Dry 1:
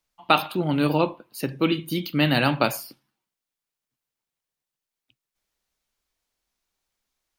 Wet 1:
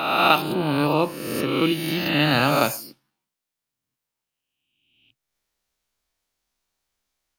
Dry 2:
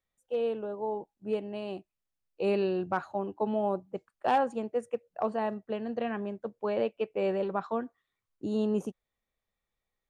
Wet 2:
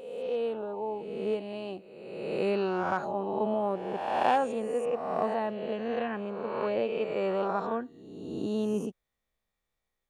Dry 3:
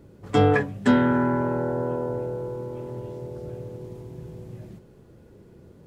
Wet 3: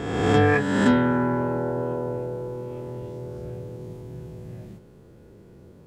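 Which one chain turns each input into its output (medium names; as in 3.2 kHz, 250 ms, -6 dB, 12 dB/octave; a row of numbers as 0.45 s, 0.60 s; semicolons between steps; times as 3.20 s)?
reverse spectral sustain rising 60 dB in 1.39 s; trim -1.5 dB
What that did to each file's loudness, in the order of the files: +2.5 LU, +1.0 LU, +1.0 LU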